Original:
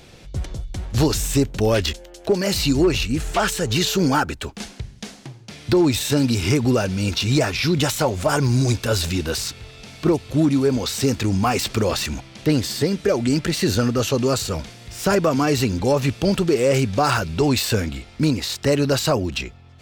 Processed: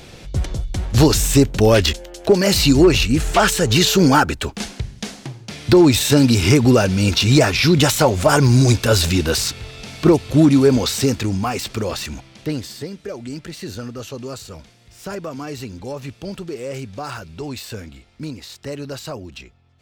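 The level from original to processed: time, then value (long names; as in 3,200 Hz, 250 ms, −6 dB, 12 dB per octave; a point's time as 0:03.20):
0:10.77 +5.5 dB
0:11.51 −3 dB
0:12.31 −3 dB
0:12.96 −11 dB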